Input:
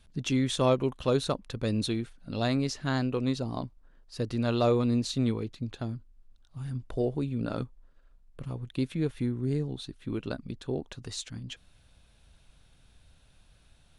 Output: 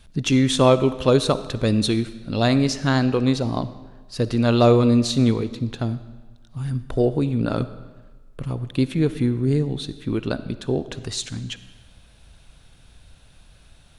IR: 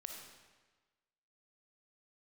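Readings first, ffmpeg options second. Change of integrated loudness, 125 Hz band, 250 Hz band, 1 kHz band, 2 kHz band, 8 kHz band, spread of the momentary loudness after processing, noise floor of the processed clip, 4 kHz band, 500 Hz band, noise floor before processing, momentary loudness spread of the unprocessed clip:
+9.5 dB, +9.5 dB, +9.5 dB, +9.5 dB, +9.5 dB, +9.5 dB, 14 LU, -51 dBFS, +9.5 dB, +9.5 dB, -60 dBFS, 14 LU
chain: -filter_complex "[0:a]asplit=2[s0][s1];[1:a]atrim=start_sample=2205[s2];[s1][s2]afir=irnorm=-1:irlink=0,volume=0.668[s3];[s0][s3]amix=inputs=2:normalize=0,volume=2.11"

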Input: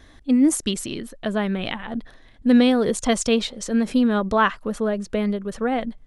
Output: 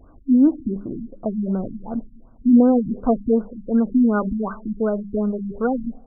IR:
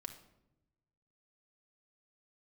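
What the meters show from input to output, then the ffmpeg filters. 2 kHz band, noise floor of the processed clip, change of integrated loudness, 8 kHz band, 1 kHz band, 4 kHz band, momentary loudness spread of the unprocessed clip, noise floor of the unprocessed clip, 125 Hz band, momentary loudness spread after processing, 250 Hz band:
-11.0 dB, -48 dBFS, +1.0 dB, under -40 dB, -4.0 dB, under -40 dB, 11 LU, -49 dBFS, +1.5 dB, 13 LU, +2.0 dB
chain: -filter_complex "[0:a]bandreject=f=201.5:t=h:w=4,bandreject=f=403:t=h:w=4,bandreject=f=604.5:t=h:w=4,asplit=2[s0][s1];[1:a]atrim=start_sample=2205[s2];[s1][s2]afir=irnorm=-1:irlink=0,volume=0.398[s3];[s0][s3]amix=inputs=2:normalize=0,afftfilt=real='re*lt(b*sr/1024,290*pow(1600/290,0.5+0.5*sin(2*PI*2.7*pts/sr)))':imag='im*lt(b*sr/1024,290*pow(1600/290,0.5+0.5*sin(2*PI*2.7*pts/sr)))':win_size=1024:overlap=0.75"

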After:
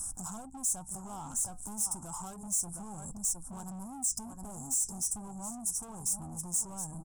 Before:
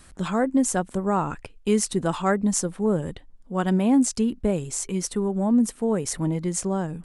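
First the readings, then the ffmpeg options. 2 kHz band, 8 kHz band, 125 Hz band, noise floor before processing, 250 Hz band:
under -25 dB, -0.5 dB, -17.0 dB, -51 dBFS, -22.0 dB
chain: -filter_complex "[0:a]aemphasis=mode=production:type=cd,acontrast=83,asplit=2[s0][s1];[s1]aecho=0:1:713:0.237[s2];[s0][s2]amix=inputs=2:normalize=0,acompressor=threshold=0.0562:ratio=10,flanger=delay=3.2:depth=6.8:regen=72:speed=0.3:shape=triangular,volume=44.7,asoftclip=hard,volume=0.0224,aeval=exprs='val(0)+0.00141*(sin(2*PI*60*n/s)+sin(2*PI*2*60*n/s)/2+sin(2*PI*3*60*n/s)/3+sin(2*PI*4*60*n/s)/4+sin(2*PI*5*60*n/s)/5)':c=same,afftfilt=real='re*(1-between(b*sr/4096,1700,5000))':imag='im*(1-between(b*sr/4096,1700,5000))':win_size=4096:overlap=0.75,asoftclip=type=tanh:threshold=0.0158,firequalizer=gain_entry='entry(110,0);entry(470,-16);entry(790,3);entry(1800,-17);entry(3100,-6);entry(7800,12);entry(12000,8)':delay=0.05:min_phase=1"

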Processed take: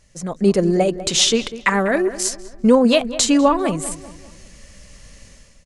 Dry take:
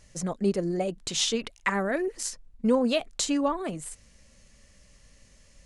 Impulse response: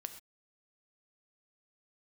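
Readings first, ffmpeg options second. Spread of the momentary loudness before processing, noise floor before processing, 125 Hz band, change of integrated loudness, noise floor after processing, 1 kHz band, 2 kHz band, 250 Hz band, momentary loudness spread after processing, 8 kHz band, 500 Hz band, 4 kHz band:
10 LU, -58 dBFS, +10.0 dB, +10.5 dB, -49 dBFS, +10.5 dB, +9.5 dB, +10.5 dB, 9 LU, +10.5 dB, +10.5 dB, +10.5 dB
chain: -filter_complex "[0:a]dynaudnorm=f=110:g=7:m=4.47,asplit=2[s0][s1];[s1]adelay=197,lowpass=f=2200:p=1,volume=0.2,asplit=2[s2][s3];[s3]adelay=197,lowpass=f=2200:p=1,volume=0.45,asplit=2[s4][s5];[s5]adelay=197,lowpass=f=2200:p=1,volume=0.45,asplit=2[s6][s7];[s7]adelay=197,lowpass=f=2200:p=1,volume=0.45[s8];[s2][s4][s6][s8]amix=inputs=4:normalize=0[s9];[s0][s9]amix=inputs=2:normalize=0"

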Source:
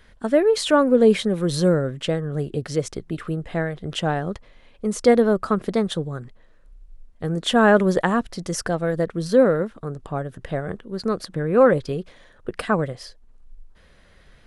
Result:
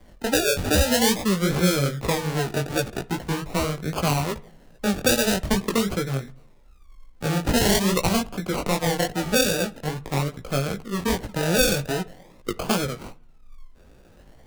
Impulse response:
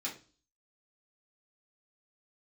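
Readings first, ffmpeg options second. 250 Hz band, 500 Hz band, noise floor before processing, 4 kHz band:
-2.5 dB, -6.0 dB, -52 dBFS, +5.0 dB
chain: -filter_complex "[0:a]acrusher=samples=33:mix=1:aa=0.000001:lfo=1:lforange=19.8:lforate=0.45,flanger=delay=15.5:depth=6.9:speed=2.5,acrossover=split=150|3000[s0][s1][s2];[s1]acompressor=threshold=0.0562:ratio=6[s3];[s0][s3][s2]amix=inputs=3:normalize=0,asplit=2[s4][s5];[1:a]atrim=start_sample=2205,asetrate=23373,aresample=44100[s6];[s5][s6]afir=irnorm=-1:irlink=0,volume=0.075[s7];[s4][s7]amix=inputs=2:normalize=0,volume=1.78"

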